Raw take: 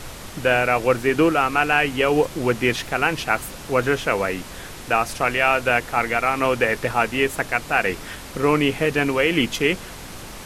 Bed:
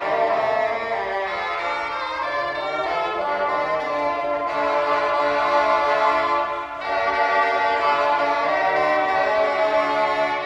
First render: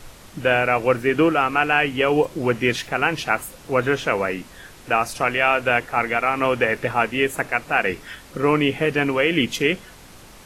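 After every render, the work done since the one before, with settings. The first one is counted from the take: noise print and reduce 8 dB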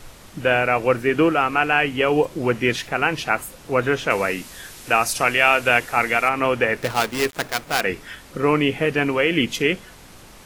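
4.1–6.29 high shelf 3100 Hz +10.5 dB; 6.81–7.81 switching dead time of 0.15 ms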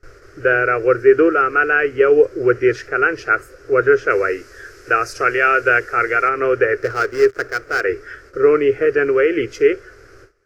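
gate with hold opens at -34 dBFS; EQ curve 120 Hz 0 dB, 190 Hz -24 dB, 400 Hz +12 dB, 920 Hz -16 dB, 1400 Hz +9 dB, 3600 Hz -18 dB, 5100 Hz -2 dB, 9500 Hz -17 dB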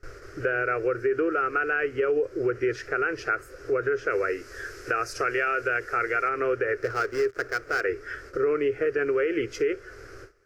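limiter -8 dBFS, peak gain reduction 7 dB; compressor 2:1, threshold -29 dBFS, peak gain reduction 10 dB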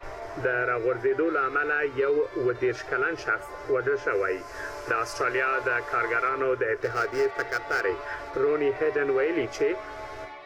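add bed -19 dB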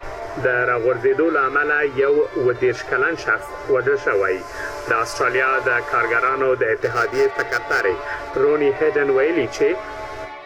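gain +7.5 dB

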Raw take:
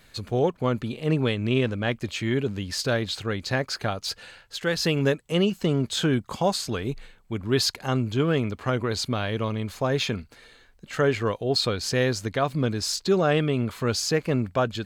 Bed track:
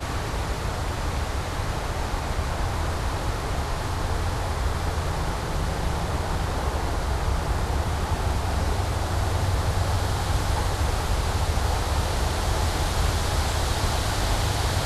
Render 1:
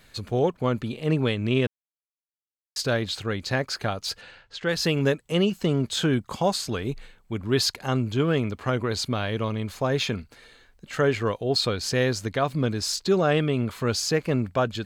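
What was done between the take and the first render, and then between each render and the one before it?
1.67–2.76 mute; 4.21–4.69 air absorption 110 m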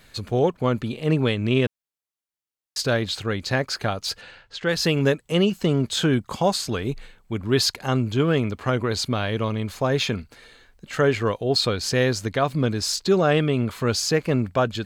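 gain +2.5 dB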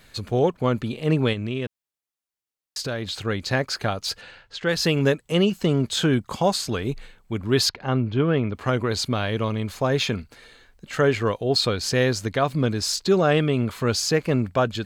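1.33–3.23 compressor 2.5:1, threshold -27 dBFS; 7.69–8.55 air absorption 250 m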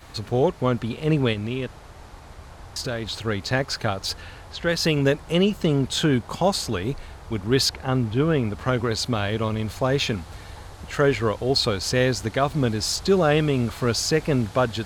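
add bed track -16 dB

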